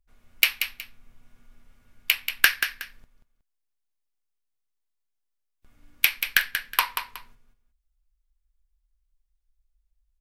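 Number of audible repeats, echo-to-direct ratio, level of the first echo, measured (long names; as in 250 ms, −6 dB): 2, −7.5 dB, −8.0 dB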